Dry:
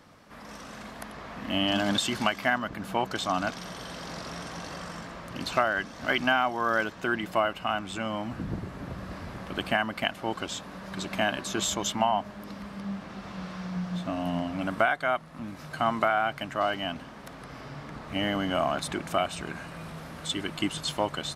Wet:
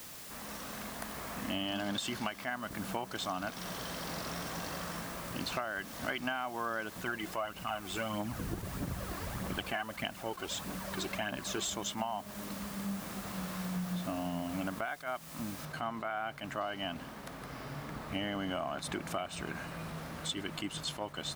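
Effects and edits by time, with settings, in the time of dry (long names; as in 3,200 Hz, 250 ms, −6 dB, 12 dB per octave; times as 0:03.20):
0:06.96–0:11.70: phase shifter 1.6 Hz
0:15.65: noise floor change −47 dB −59 dB
whole clip: downward compressor 6 to 1, threshold −31 dBFS; level that may rise only so fast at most 210 dB per second; level −1.5 dB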